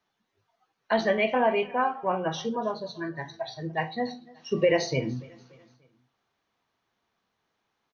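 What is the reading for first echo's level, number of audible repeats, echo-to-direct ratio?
-23.0 dB, 2, -22.0 dB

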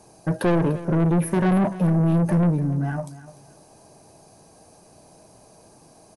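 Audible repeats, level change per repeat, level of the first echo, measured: 2, -13.5 dB, -16.0 dB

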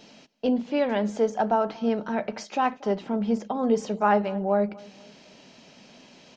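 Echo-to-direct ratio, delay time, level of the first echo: -22.5 dB, 235 ms, -23.0 dB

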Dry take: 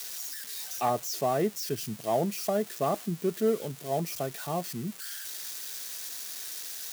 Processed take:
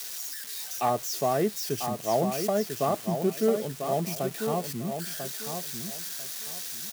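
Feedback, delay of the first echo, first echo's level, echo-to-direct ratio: 23%, 995 ms, -7.0 dB, -7.0 dB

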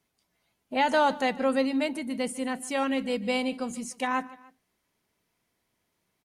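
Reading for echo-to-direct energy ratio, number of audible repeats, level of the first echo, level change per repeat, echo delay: -19.0 dB, 2, -20.0 dB, -6.0 dB, 149 ms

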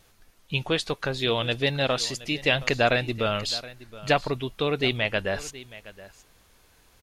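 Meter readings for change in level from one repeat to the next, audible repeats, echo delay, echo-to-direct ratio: no regular repeats, 1, 721 ms, -18.0 dB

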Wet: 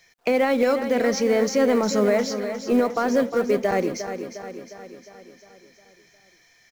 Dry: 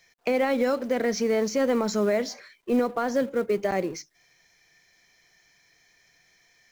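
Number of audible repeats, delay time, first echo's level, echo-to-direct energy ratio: 6, 356 ms, -9.5 dB, -8.0 dB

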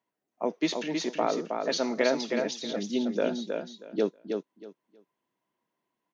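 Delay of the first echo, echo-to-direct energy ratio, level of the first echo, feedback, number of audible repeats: 318 ms, -5.0 dB, -5.0 dB, 20%, 3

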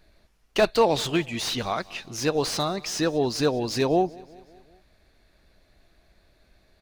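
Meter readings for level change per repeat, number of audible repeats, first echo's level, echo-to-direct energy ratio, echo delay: -5.0 dB, 3, -23.0 dB, -21.5 dB, 189 ms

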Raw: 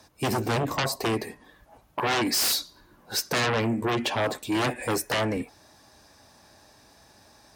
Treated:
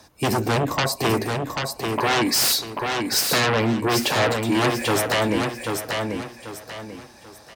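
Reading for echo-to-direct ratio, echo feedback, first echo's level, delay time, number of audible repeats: -4.0 dB, 33%, -4.5 dB, 789 ms, 4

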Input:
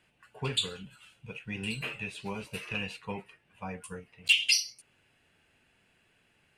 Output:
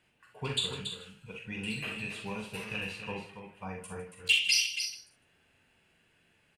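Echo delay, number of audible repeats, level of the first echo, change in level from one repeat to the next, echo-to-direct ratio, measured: 42 ms, 5, -6.0 dB, no regular repeats, -2.0 dB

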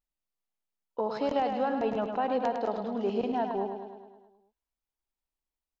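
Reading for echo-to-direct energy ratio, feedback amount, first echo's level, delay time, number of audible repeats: -4.5 dB, 59%, -6.5 dB, 105 ms, 7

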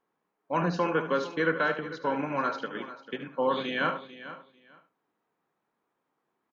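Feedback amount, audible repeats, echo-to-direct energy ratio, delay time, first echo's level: no regular repeats, 4, -9.5 dB, 74 ms, -11.5 dB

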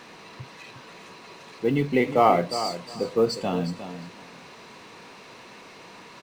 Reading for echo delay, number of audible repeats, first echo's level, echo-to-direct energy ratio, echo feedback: 358 ms, 2, -11.0 dB, -11.0 dB, 18%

